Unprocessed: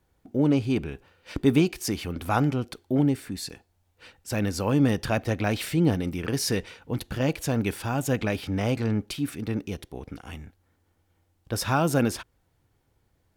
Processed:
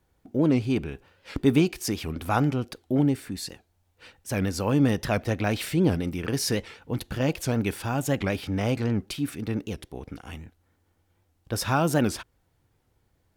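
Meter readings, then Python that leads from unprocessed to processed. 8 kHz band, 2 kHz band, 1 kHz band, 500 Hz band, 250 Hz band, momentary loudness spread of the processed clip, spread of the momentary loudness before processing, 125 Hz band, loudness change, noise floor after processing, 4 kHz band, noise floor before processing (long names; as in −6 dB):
0.0 dB, 0.0 dB, 0.0 dB, 0.0 dB, 0.0 dB, 15 LU, 15 LU, 0.0 dB, 0.0 dB, −70 dBFS, 0.0 dB, −70 dBFS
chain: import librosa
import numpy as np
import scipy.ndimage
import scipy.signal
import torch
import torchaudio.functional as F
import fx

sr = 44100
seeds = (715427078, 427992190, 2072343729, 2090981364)

y = fx.record_warp(x, sr, rpm=78.0, depth_cents=160.0)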